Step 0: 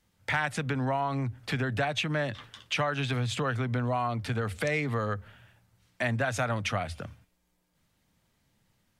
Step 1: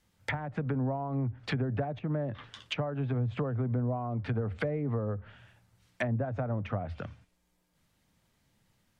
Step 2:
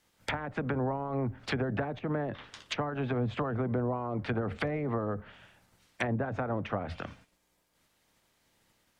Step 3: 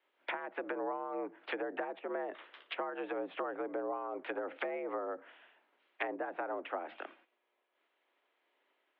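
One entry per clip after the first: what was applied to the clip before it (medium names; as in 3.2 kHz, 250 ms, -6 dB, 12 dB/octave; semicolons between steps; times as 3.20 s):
low-pass that closes with the level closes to 550 Hz, closed at -25.5 dBFS
spectral peaks clipped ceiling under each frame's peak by 14 dB
mistuned SSB +62 Hz 280–3200 Hz; trim -4 dB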